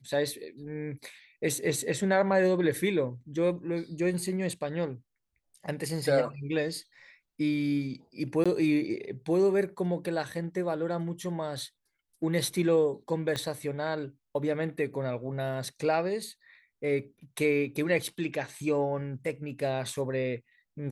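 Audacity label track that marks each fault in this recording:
8.440000	8.460000	dropout 16 ms
13.360000	13.360000	pop -18 dBFS

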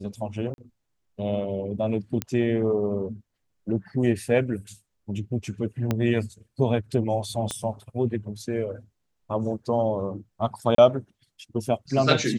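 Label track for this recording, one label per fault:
0.540000	0.580000	dropout 41 ms
2.220000	2.220000	pop -10 dBFS
5.910000	5.910000	pop -11 dBFS
7.510000	7.510000	pop -15 dBFS
10.750000	10.780000	dropout 33 ms

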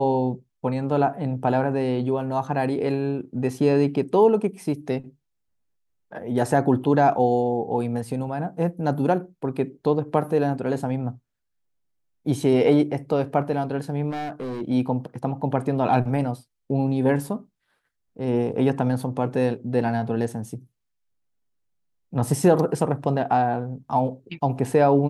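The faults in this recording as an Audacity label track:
14.100000	14.620000	clipped -27 dBFS

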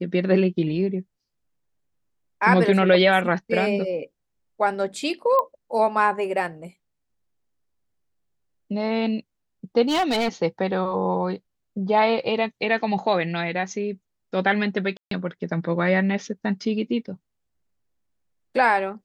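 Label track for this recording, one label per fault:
5.390000	5.390000	pop -13 dBFS
9.880000	10.290000	clipped -18.5 dBFS
14.970000	15.110000	dropout 143 ms

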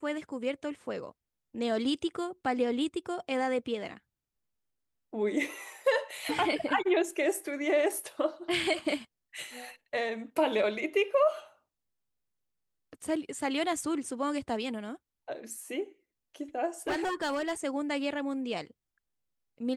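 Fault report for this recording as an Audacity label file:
16.870000	17.530000	clipped -26.5 dBFS

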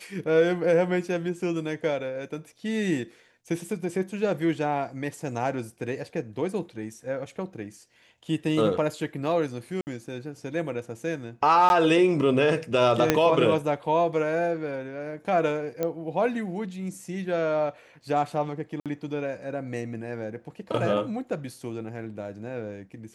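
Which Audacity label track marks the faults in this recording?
9.810000	9.870000	dropout 59 ms
11.690000	11.700000	dropout 11 ms
13.100000	13.100000	pop -4 dBFS
15.830000	15.830000	pop -14 dBFS
18.800000	18.860000	dropout 57 ms

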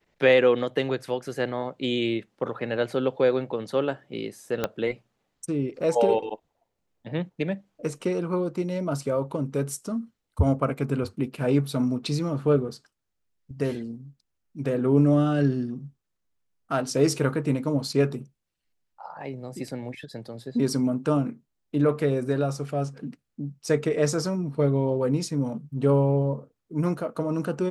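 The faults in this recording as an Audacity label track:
4.640000	4.640000	pop -11 dBFS

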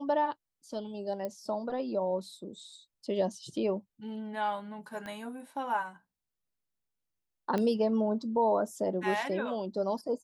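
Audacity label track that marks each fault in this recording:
1.250000	1.250000	pop -24 dBFS
5.060000	5.060000	pop -28 dBFS
7.580000	7.580000	pop -19 dBFS

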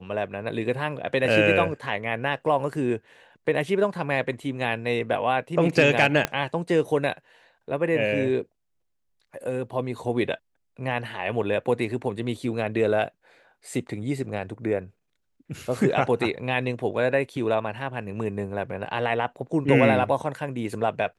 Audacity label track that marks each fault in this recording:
6.250000	6.250000	pop -7 dBFS

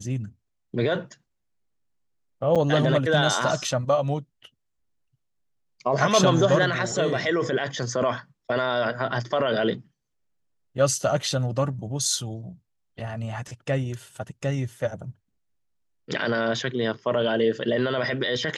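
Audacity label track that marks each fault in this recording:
2.550000	2.560000	dropout 6.7 ms

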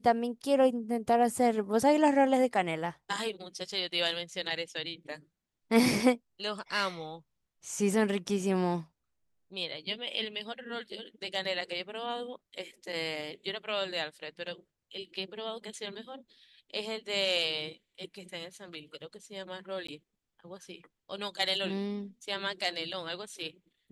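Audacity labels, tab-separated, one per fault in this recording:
19.870000	19.880000	dropout 14 ms

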